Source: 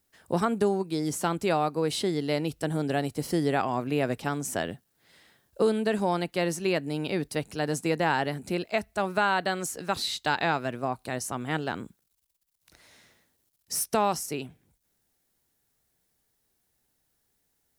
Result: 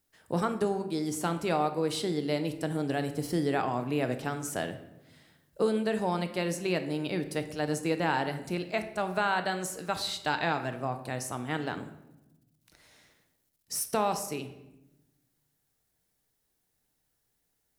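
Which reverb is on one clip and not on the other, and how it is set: shoebox room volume 370 m³, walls mixed, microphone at 0.49 m; gain -3.5 dB

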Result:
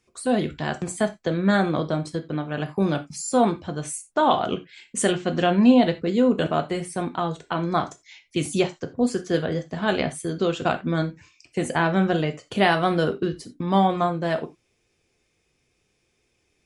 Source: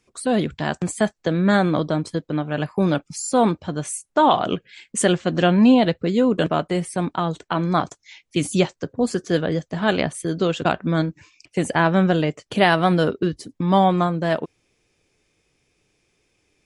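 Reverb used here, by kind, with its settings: non-linear reverb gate 0.11 s falling, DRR 7 dB; gain -3.5 dB

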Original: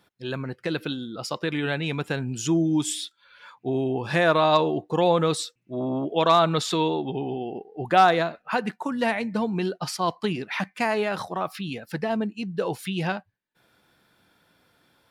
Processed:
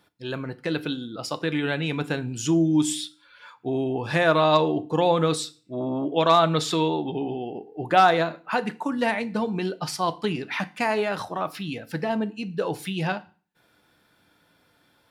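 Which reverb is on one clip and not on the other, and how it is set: FDN reverb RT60 0.39 s, low-frequency decay 1.2×, high-frequency decay 0.95×, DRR 12 dB

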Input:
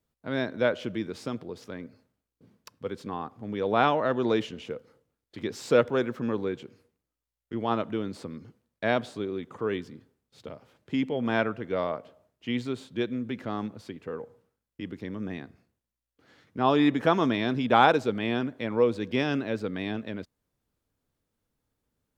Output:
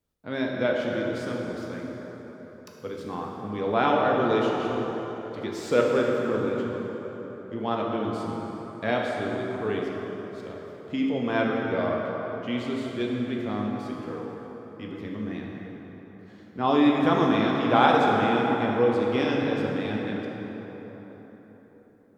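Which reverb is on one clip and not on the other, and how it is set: plate-style reverb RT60 4.4 s, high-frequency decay 0.55×, DRR -2 dB; gain -2 dB

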